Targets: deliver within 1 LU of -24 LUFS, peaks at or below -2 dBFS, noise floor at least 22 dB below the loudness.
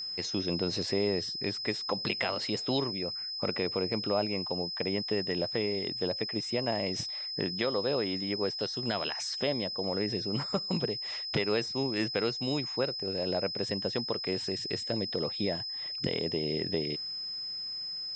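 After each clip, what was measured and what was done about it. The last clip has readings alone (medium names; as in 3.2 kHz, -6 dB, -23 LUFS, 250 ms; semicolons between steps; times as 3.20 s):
steady tone 5.1 kHz; tone level -35 dBFS; loudness -31.5 LUFS; peak level -15.0 dBFS; loudness target -24.0 LUFS
-> band-stop 5.1 kHz, Q 30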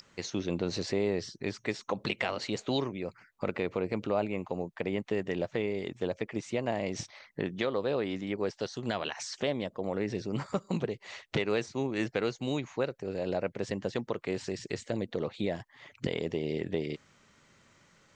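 steady tone not found; loudness -34.0 LUFS; peak level -15.5 dBFS; loudness target -24.0 LUFS
-> trim +10 dB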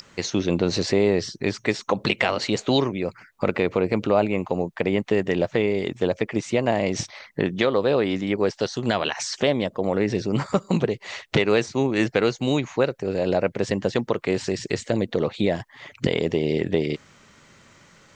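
loudness -24.0 LUFS; peak level -5.5 dBFS; noise floor -55 dBFS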